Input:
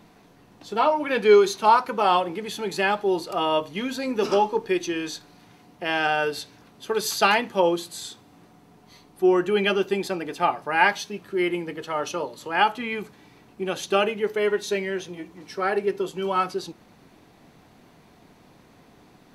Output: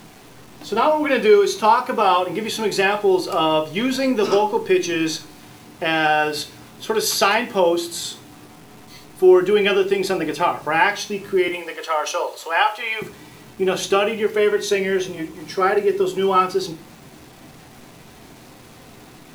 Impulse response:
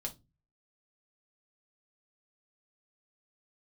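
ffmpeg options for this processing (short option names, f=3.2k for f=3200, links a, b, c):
-filter_complex "[0:a]asettb=1/sr,asplit=3[a][b][c];[a]atrim=end=11.484[d];[b]atrim=start=11.48:end=13.02,asetpts=PTS-STARTPTS,afade=t=in:d=0.004:c=qsin,afade=t=out:st=1.536:d=0.004:c=qsin,highpass=f=500:w=0.5412,highpass=f=500:w=1.3066[e];[c]atrim=start=13.016[f];[d][e]acrossfade=d=0.004:c1=hsin:c2=qsin[g];[g][f]acrossfade=d=0.004:c1=qsin:c2=hsin,acompressor=threshold=-25dB:ratio=2,acrusher=bits=8:mix=0:aa=0.000001,asplit=2[h][i];[1:a]atrim=start_sample=2205,asetrate=26901,aresample=44100[j];[i][j]afir=irnorm=-1:irlink=0,volume=-1.5dB[k];[h][k]amix=inputs=2:normalize=0,volume=2.5dB"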